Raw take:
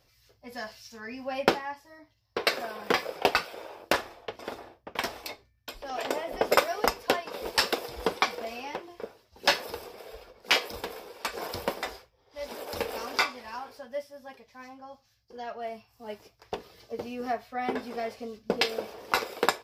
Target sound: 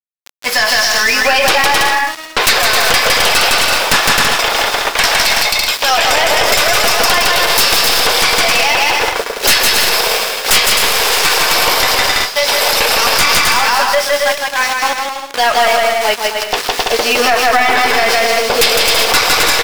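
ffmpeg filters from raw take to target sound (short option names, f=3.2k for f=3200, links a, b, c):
-filter_complex "[0:a]asettb=1/sr,asplit=3[a][b][c];[a]atrim=end=10.794[d];[b]atrim=start=10.79:end=11.29,asetpts=PTS-STARTPTS,afade=t=in:d=0.004:c=qsin,afade=t=out:st=0.496:d=0.004:c=qsin,aeval=exprs='val(0)+0.5*0.0188*sgn(val(0))':c=same[e];[c]atrim=start=11.286[f];[d][e]acrossfade=d=0.004:c1=hsin:c2=qsin[g];[g][f]acrossfade=d=0.004:c1=qsin:c2=hsin,highpass=f=1.2k:p=1,equalizer=f=10k:t=o:w=2.7:g=7.5,acrusher=bits=7:mix=0:aa=0.000001,asplit=2[h][i];[i]highpass=f=720:p=1,volume=12dB,asoftclip=type=tanh:threshold=-4.5dB[j];[h][j]amix=inputs=2:normalize=0,lowpass=f=3.7k:p=1,volume=-6dB,aeval=exprs='0.531*sin(PI/2*3.98*val(0)/0.531)':c=same,aeval=exprs='1.88*(cos(1*acos(clip(val(0)/1.88,-1,1)))-cos(1*PI/2))+0.473*(cos(4*acos(clip(val(0)/1.88,-1,1)))-cos(4*PI/2))':c=same,asplit=2[k][l];[l]aecho=0:1:160|264|331.6|375.5|404.1:0.631|0.398|0.251|0.158|0.1[m];[k][m]amix=inputs=2:normalize=0,alimiter=level_in=12.5dB:limit=-1dB:release=50:level=0:latency=1,volume=-1dB"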